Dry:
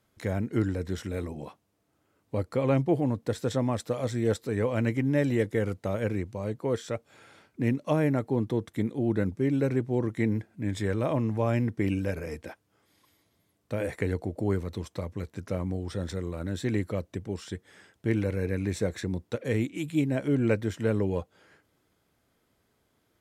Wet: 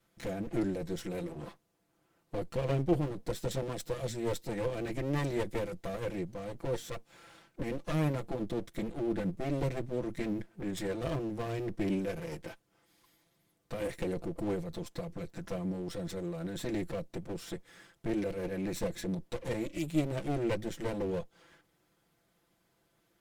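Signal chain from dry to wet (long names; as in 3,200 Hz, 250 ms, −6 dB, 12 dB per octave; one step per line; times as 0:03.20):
lower of the sound and its delayed copy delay 5.9 ms
dynamic equaliser 1,100 Hz, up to −8 dB, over −47 dBFS, Q 0.73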